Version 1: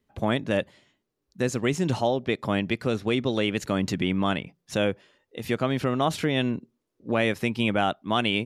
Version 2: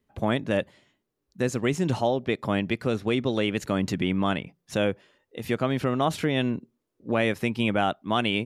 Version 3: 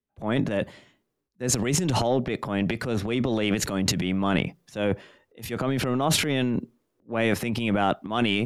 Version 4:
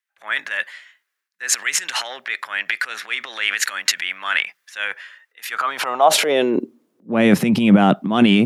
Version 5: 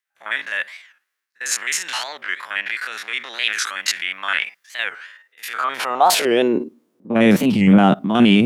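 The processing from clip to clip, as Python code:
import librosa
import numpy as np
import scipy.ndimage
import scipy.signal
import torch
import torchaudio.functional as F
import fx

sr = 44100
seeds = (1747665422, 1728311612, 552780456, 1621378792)

y1 = fx.peak_eq(x, sr, hz=4900.0, db=-2.5, octaves=1.7)
y2 = fx.transient(y1, sr, attack_db=-6, sustain_db=12)
y2 = fx.band_widen(y2, sr, depth_pct=40)
y3 = fx.filter_sweep_highpass(y2, sr, from_hz=1700.0, to_hz=180.0, start_s=5.4, end_s=7.07, q=3.0)
y3 = y3 * librosa.db_to_amplitude(6.0)
y4 = fx.spec_steps(y3, sr, hold_ms=50)
y4 = fx.record_warp(y4, sr, rpm=45.0, depth_cents=250.0)
y4 = y4 * librosa.db_to_amplitude(1.5)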